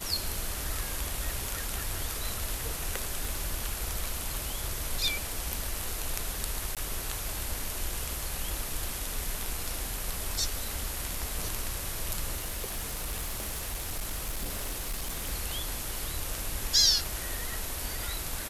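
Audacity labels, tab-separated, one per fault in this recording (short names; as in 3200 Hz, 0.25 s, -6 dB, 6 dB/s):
3.250000	3.250000	pop
6.750000	6.770000	gap 17 ms
12.360000	15.330000	clipped -29 dBFS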